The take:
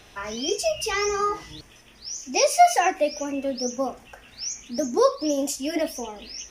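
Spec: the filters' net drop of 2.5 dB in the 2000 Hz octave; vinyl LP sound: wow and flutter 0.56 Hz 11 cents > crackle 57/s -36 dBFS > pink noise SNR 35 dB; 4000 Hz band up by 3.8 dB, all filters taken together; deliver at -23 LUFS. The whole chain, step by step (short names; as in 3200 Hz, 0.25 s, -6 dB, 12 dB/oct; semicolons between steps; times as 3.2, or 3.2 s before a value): bell 2000 Hz -5.5 dB; bell 4000 Hz +7.5 dB; wow and flutter 0.56 Hz 11 cents; crackle 57/s -36 dBFS; pink noise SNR 35 dB; gain +1 dB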